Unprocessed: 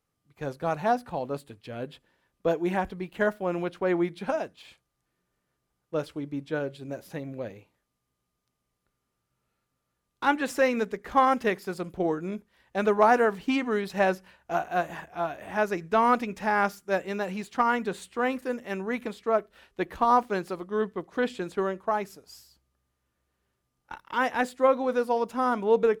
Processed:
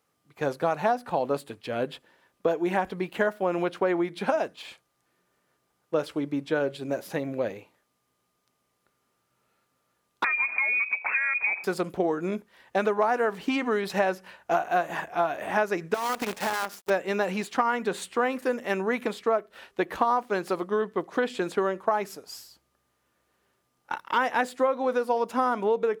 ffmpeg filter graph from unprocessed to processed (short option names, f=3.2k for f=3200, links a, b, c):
-filter_complex "[0:a]asettb=1/sr,asplit=3[a][b][c];[a]atrim=end=10.244[d];[b]atrim=start=10.24:end=11.64,asetpts=PTS-STARTPTS,afade=t=in:d=0.004:c=qsin,afade=t=out:st=1.396:d=0.004:c=qsin,equalizer=f=280:w=0.52:g=11,acompressor=threshold=-29dB:ratio=10:attack=3.2:release=140:knee=1:detection=peak,lowpass=f=2.3k:t=q:w=0.5098,lowpass=f=2.3k:t=q:w=0.6013,lowpass=f=2.3k:t=q:w=0.9,lowpass=f=2.3k:t=q:w=2.563,afreqshift=-2700[e];[c]atrim=start=11.636[f];[d][e]acrossfade=d=0.004:c1=hsin:c2=qsin[g];[g][f]acrossfade=d=0.004:c1=qsin:c2=hsin,asettb=1/sr,asplit=3[h][i][j];[h]atrim=end=15.944[k];[i]atrim=start=15.94:end=16.9,asetpts=PTS-STARTPTS,afade=t=in:d=0.004:c=qsin,afade=t=out:st=0.956:d=0.004:c=qsin,highpass=f=170:p=1,acompressor=threshold=-31dB:ratio=16:attack=3.2:release=140:knee=1:detection=peak,acrusher=bits=7:dc=4:mix=0:aa=0.000001[l];[j]atrim=start=16.896[m];[k][l]acrossfade=d=0.004:c1=hsin:c2=qsin[n];[n][m]acrossfade=d=0.004:c1=qsin:c2=hsin,acompressor=threshold=-29dB:ratio=10,highpass=f=250:p=1,equalizer=f=750:t=o:w=2.9:g=2.5,volume=7dB"